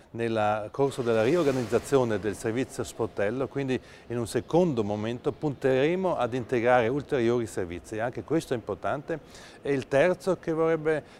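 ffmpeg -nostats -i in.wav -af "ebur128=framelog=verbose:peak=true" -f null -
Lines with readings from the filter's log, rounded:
Integrated loudness:
  I:         -27.5 LUFS
  Threshold: -37.5 LUFS
Loudness range:
  LRA:         2.9 LU
  Threshold: -47.8 LUFS
  LRA low:   -29.3 LUFS
  LRA high:  -26.4 LUFS
True peak:
  Peak:       -8.1 dBFS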